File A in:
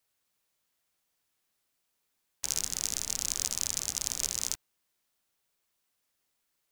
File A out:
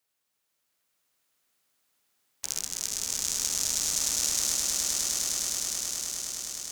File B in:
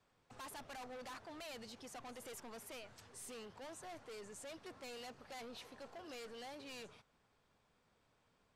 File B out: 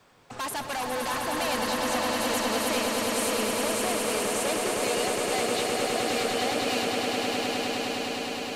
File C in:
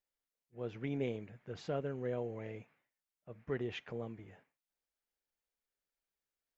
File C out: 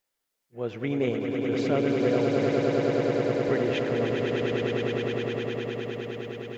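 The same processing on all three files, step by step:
low shelf 100 Hz -8.5 dB; on a send: swelling echo 0.103 s, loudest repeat 8, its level -5.5 dB; on the sum: match loudness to -27 LUFS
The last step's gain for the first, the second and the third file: -1.0, +18.0, +10.5 dB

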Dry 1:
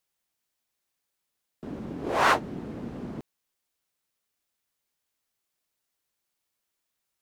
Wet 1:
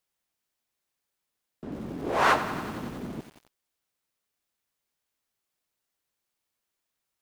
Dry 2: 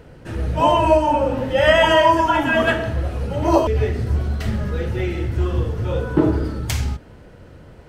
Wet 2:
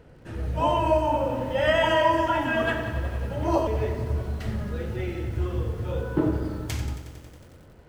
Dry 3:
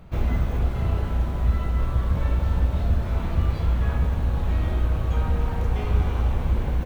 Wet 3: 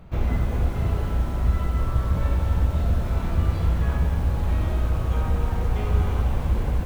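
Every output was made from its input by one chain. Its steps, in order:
high shelf 2900 Hz -2.5 dB; lo-fi delay 91 ms, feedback 80%, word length 7-bit, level -12 dB; normalise peaks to -9 dBFS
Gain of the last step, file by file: 0.0, -7.5, +0.5 dB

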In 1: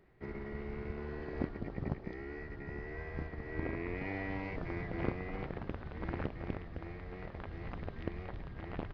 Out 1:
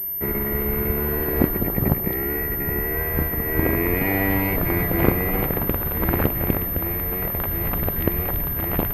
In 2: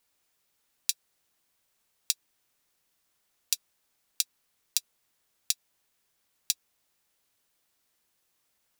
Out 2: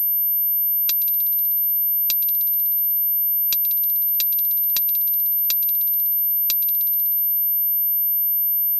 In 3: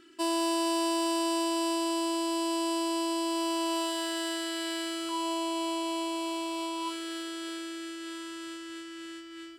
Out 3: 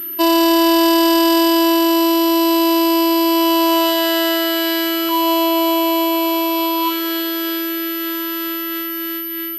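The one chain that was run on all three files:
multi-head echo 62 ms, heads second and third, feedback 60%, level -18.5 dB; pulse-width modulation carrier 13000 Hz; normalise peaks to -3 dBFS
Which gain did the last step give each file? +16.5, +6.5, +15.5 dB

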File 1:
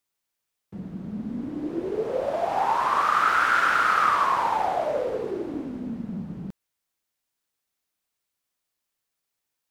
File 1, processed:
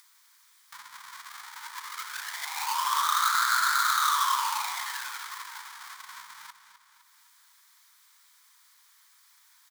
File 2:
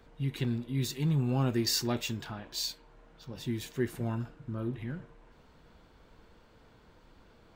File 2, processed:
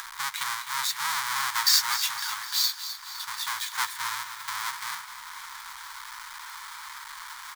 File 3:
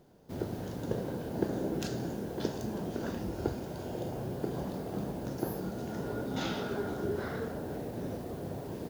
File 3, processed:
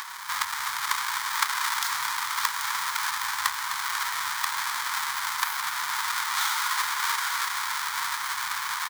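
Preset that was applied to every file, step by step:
half-waves squared off; elliptic high-pass 960 Hz, stop band 40 dB; bell 2700 Hz -11.5 dB 0.25 oct; upward compressor, threshold -33 dBFS; on a send: feedback echo 0.255 s, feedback 55%, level -11 dB; on the sum: match loudness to -27 LUFS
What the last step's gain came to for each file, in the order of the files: -6.0, +7.5, +11.0 dB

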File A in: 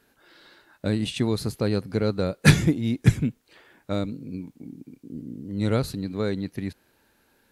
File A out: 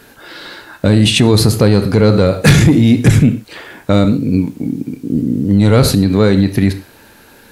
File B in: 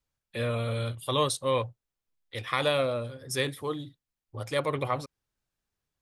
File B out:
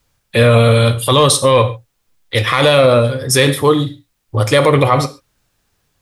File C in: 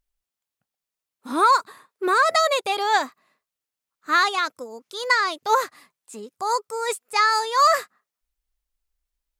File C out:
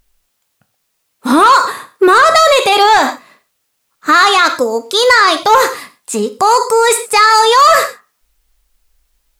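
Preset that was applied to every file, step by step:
non-linear reverb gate 0.16 s falling, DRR 10 dB; soft clip -13 dBFS; maximiser +22 dB; gain -1 dB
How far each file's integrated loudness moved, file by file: +13.5, +17.5, +11.5 LU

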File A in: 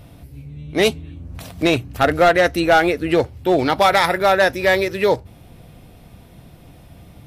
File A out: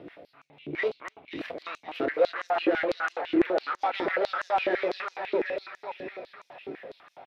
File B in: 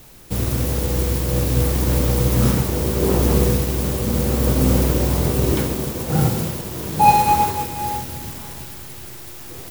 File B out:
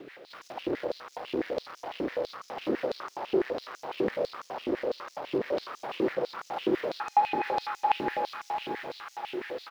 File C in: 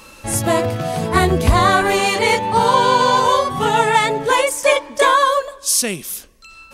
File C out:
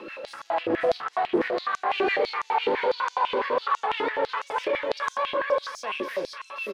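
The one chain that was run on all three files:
dynamic EQ 5000 Hz, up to +5 dB, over -42 dBFS, Q 2.7; compressor, threshold -19 dBFS; limiter -19 dBFS; rotary speaker horn 6 Hz; echo with dull and thin repeats by turns 0.265 s, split 2000 Hz, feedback 67%, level -2.5 dB; soft clip -28.5 dBFS; air absorption 360 m; doubler 28 ms -10.5 dB; stepped high-pass 12 Hz 350–6400 Hz; normalise peaks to -12 dBFS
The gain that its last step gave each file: +4.0, +5.0, +6.5 dB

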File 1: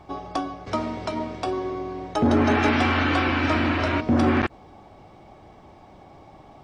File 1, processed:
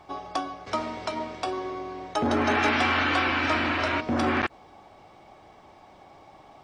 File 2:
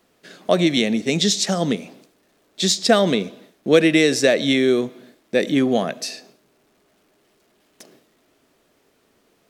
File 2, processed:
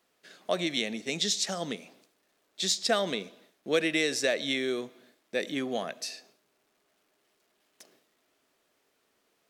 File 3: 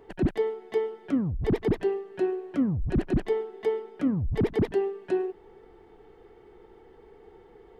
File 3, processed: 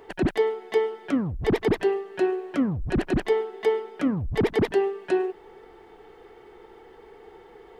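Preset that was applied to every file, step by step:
low shelf 410 Hz -11 dB; normalise peaks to -12 dBFS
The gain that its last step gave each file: +1.0, -8.0, +9.0 dB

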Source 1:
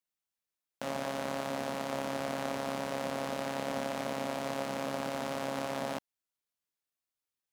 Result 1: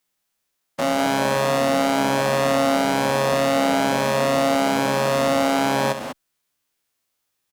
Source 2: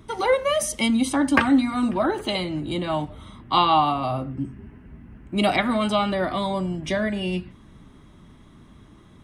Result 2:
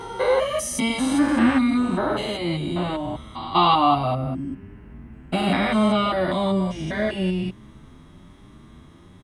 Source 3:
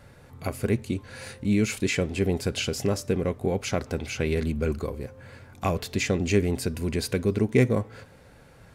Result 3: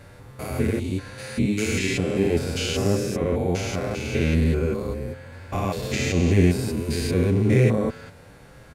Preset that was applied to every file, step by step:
stepped spectrum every 0.2 s; endless flanger 8.3 ms +1.1 Hz; normalise peaks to -6 dBFS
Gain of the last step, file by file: +19.5, +7.0, +9.5 dB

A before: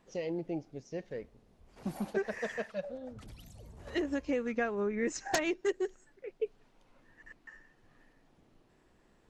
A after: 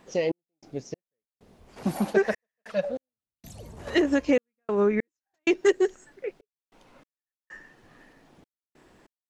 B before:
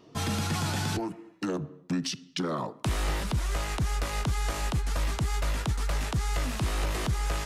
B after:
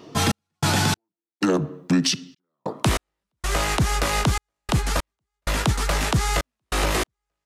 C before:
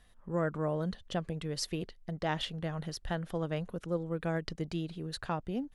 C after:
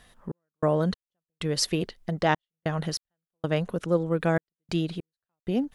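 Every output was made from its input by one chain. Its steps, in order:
low shelf 73 Hz -11 dB; step gate "xx..xx...xxxx" 96 bpm -60 dB; normalise peaks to -9 dBFS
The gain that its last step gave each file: +11.5, +11.0, +10.0 dB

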